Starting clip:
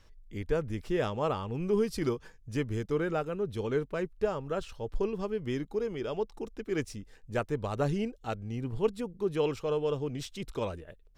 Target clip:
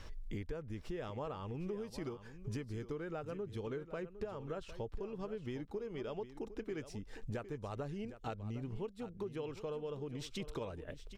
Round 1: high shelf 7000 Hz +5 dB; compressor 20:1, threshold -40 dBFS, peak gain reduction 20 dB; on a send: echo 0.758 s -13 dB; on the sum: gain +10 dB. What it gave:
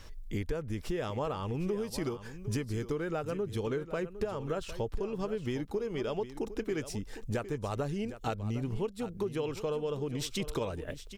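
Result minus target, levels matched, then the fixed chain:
compressor: peak gain reduction -8 dB; 8000 Hz band +5.0 dB
high shelf 7000 Hz -6.5 dB; compressor 20:1, threshold -48.5 dBFS, peak gain reduction 28 dB; on a send: echo 0.758 s -13 dB; on the sum: gain +10 dB

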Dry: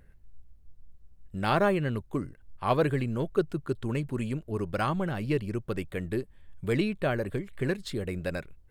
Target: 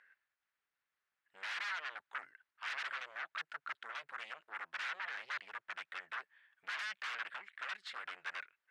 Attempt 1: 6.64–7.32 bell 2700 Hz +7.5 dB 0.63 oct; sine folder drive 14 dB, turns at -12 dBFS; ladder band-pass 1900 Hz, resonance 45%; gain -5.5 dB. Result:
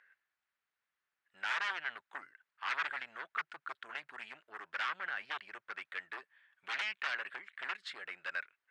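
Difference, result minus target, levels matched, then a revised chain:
sine folder: distortion -12 dB
6.64–7.32 bell 2700 Hz +7.5 dB 0.63 oct; sine folder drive 14 dB, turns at -19 dBFS; ladder band-pass 1900 Hz, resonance 45%; gain -5.5 dB

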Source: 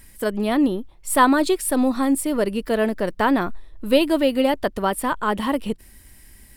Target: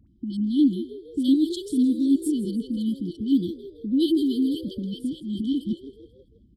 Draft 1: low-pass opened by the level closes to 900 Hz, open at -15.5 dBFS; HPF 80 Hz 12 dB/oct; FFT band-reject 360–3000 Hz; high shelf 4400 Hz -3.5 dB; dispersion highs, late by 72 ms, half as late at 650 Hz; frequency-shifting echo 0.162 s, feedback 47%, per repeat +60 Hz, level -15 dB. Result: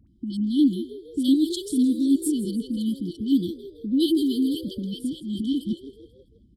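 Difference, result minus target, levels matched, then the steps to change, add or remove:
8000 Hz band +6.5 dB
change: high shelf 4400 Hz -11.5 dB

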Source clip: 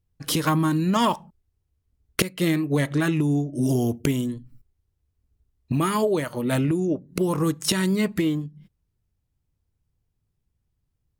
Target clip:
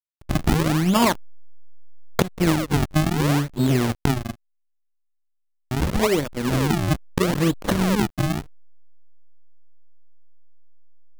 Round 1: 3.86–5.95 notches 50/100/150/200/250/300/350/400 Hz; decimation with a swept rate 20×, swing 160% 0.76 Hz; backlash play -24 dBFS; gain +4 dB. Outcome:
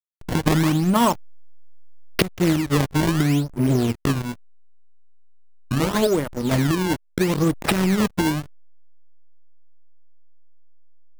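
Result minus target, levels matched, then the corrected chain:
decimation with a swept rate: distortion -8 dB
3.86–5.95 notches 50/100/150/200/250/300/350/400 Hz; decimation with a swept rate 53×, swing 160% 0.76 Hz; backlash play -24 dBFS; gain +4 dB

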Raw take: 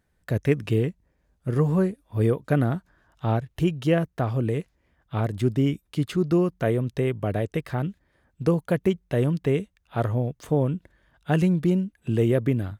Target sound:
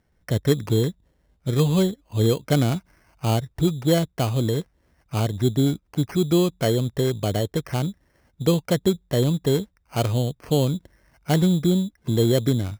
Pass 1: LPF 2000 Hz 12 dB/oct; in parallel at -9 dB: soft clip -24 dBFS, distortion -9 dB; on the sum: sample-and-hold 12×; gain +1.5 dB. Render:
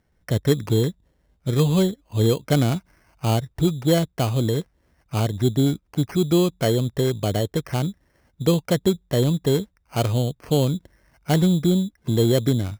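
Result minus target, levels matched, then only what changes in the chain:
soft clip: distortion -5 dB
change: soft clip -32.5 dBFS, distortion -4 dB

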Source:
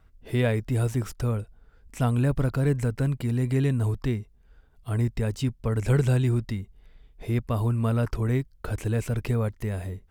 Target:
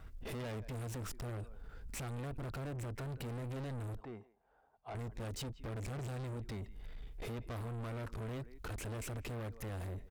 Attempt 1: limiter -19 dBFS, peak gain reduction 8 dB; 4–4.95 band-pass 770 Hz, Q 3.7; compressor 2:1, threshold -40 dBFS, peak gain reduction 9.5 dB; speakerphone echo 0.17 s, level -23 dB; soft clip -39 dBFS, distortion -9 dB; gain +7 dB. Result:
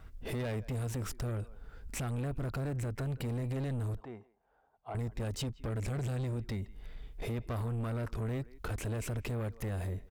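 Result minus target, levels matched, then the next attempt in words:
soft clip: distortion -4 dB
limiter -19 dBFS, peak gain reduction 8 dB; 4–4.95 band-pass 770 Hz, Q 3.7; compressor 2:1, threshold -40 dBFS, peak gain reduction 9.5 dB; speakerphone echo 0.17 s, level -23 dB; soft clip -47 dBFS, distortion -5 dB; gain +7 dB

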